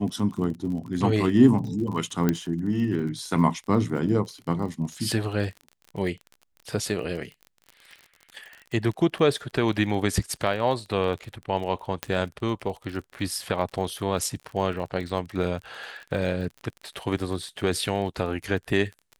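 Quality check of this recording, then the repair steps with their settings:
crackle 40/s -34 dBFS
2.29 pop -9 dBFS
12.03 pop -10 dBFS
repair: de-click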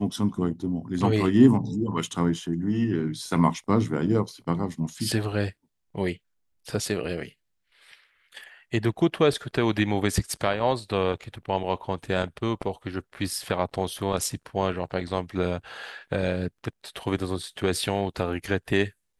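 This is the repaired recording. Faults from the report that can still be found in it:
12.03 pop

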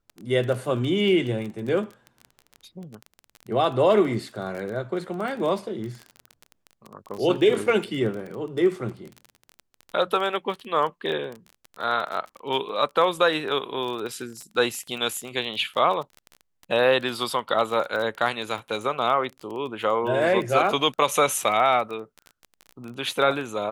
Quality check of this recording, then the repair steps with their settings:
crackle 22/s -30 dBFS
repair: de-click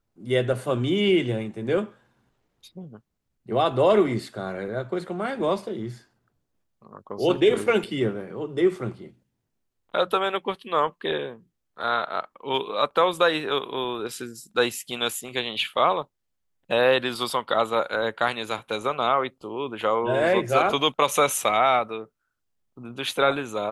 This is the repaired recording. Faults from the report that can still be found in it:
none

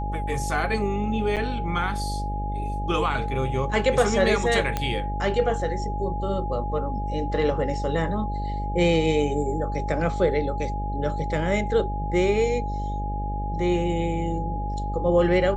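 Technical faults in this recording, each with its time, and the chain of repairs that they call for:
buzz 50 Hz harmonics 13 -29 dBFS
tone 830 Hz -31 dBFS
1.36–1.37 gap 7.6 ms
4.77 pop -11 dBFS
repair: de-click; notch 830 Hz, Q 30; de-hum 50 Hz, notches 13; interpolate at 1.36, 7.6 ms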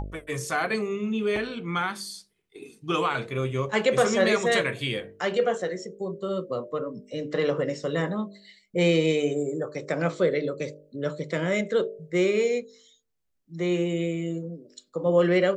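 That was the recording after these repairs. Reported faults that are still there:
none

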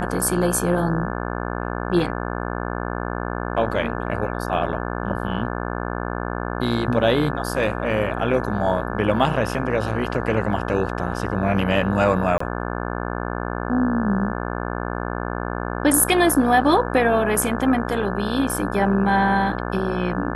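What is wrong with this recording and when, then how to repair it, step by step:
buzz 60 Hz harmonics 29 -27 dBFS
12.38–12.4 gap 24 ms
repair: de-hum 60 Hz, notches 29; interpolate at 12.38, 24 ms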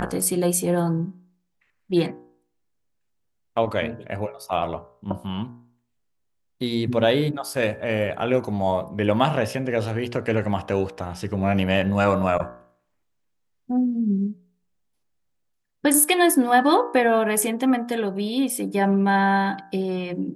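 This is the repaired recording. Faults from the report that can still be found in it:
none

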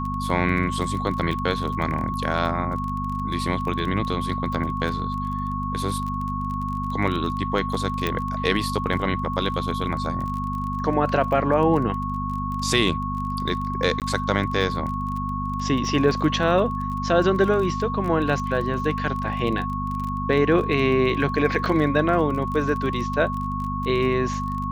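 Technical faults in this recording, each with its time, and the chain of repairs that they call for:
crackle 25/s -29 dBFS
hum 50 Hz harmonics 5 -29 dBFS
tone 1100 Hz -28 dBFS
8.07 pop -11 dBFS
14–14.02 gap 18 ms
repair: de-click; de-hum 50 Hz, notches 5; notch 1100 Hz, Q 30; interpolate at 14, 18 ms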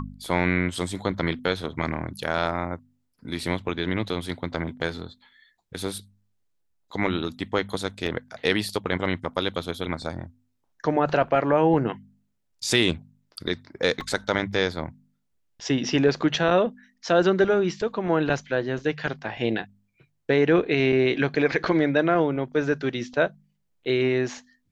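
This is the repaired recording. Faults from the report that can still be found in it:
8.07 pop

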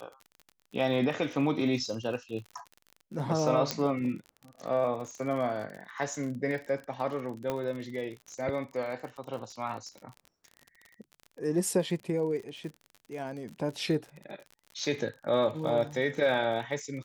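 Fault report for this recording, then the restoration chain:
crackle 43/s -38 dBFS
3.71 pop -12 dBFS
7.5 pop -18 dBFS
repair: de-click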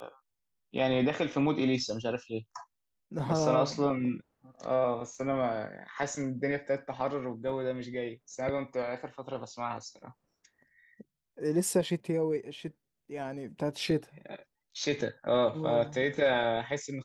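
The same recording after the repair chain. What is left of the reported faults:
7.5 pop

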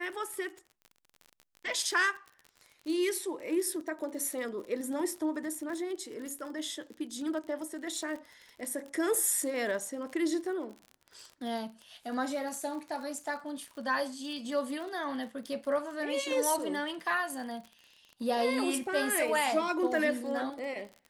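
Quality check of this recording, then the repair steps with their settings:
crackle 39/s -39 dBFS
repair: de-click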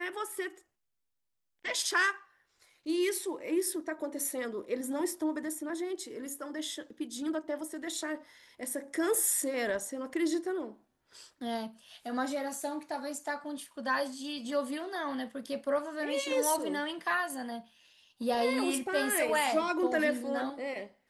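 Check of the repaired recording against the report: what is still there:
none

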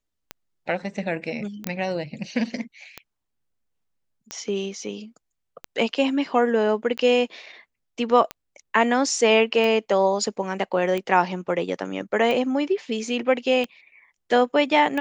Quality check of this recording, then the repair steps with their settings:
tick 45 rpm -15 dBFS
1.67 pop -12 dBFS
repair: de-click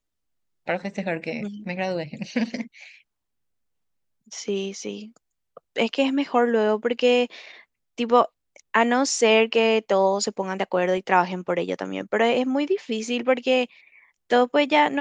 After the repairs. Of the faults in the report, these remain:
none

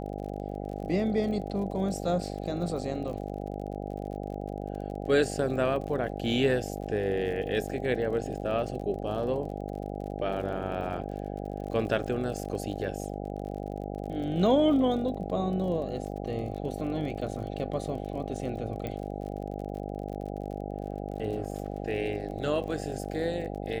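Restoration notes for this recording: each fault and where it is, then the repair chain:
buzz 50 Hz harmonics 16 -36 dBFS
crackle 44/s -39 dBFS
18.87 pop -22 dBFS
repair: de-click; de-hum 50 Hz, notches 16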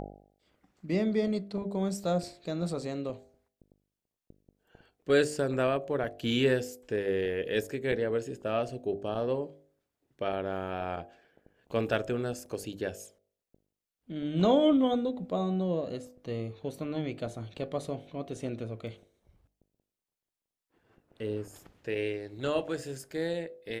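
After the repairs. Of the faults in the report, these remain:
18.87 pop

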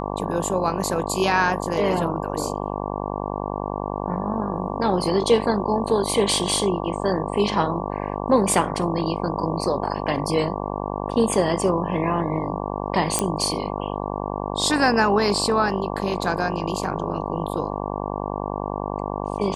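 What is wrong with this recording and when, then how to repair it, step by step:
buzz 50 Hz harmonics 23 -28 dBFS
13.19 pop -5 dBFS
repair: de-click; de-hum 50 Hz, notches 23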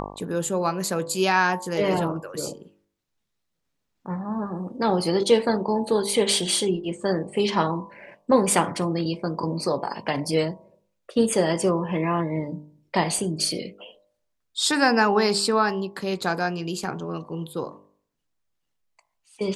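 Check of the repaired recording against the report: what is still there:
none

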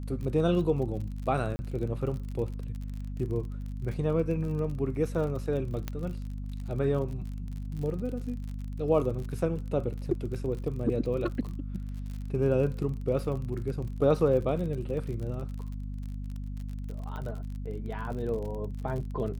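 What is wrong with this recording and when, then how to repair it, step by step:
crackle 42/s -37 dBFS
hum 50 Hz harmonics 5 -36 dBFS
1.56–1.59 gap 30 ms
5.88 pop -18 dBFS
17.16 pop -27 dBFS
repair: de-click; de-hum 50 Hz, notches 5; interpolate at 1.56, 30 ms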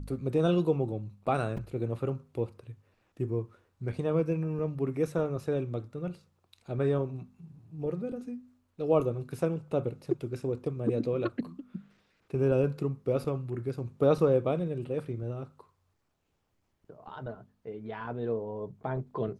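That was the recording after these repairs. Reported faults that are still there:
17.16 pop

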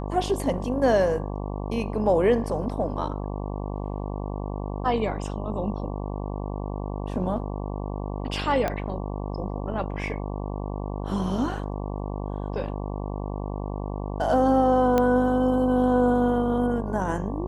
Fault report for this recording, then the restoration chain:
buzz 50 Hz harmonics 23 -31 dBFS
8.68 pop -13 dBFS
14.98 pop -10 dBFS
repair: de-click; de-hum 50 Hz, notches 23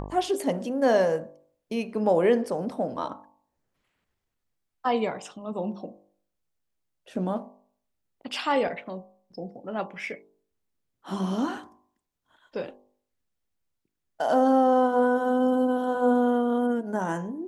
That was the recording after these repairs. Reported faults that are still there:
8.68 pop

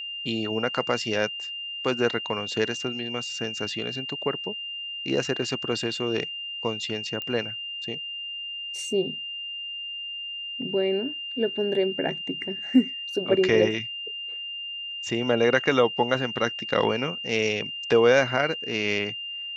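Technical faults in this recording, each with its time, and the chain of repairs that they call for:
tone 2800 Hz -32 dBFS
7.22 pop -19 dBFS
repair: de-click; notch 2800 Hz, Q 30

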